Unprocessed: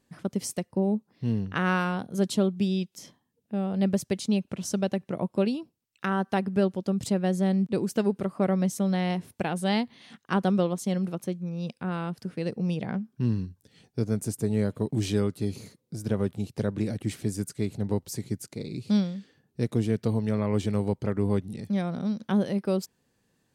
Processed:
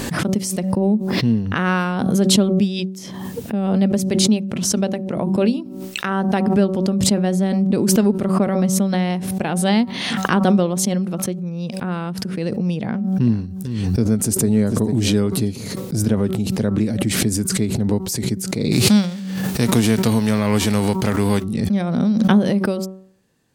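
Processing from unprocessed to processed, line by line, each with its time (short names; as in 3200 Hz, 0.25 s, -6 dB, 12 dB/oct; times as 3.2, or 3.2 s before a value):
3.96–6.29 notches 50/100/150/200/250/300/350 Hz
12.8–15.48 echo 0.447 s -15.5 dB
18.71–21.42 spectral whitening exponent 0.6
whole clip: dynamic EQ 230 Hz, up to +6 dB, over -42 dBFS, Q 3.9; de-hum 189.1 Hz, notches 7; backwards sustainer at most 31 dB/s; gain +5.5 dB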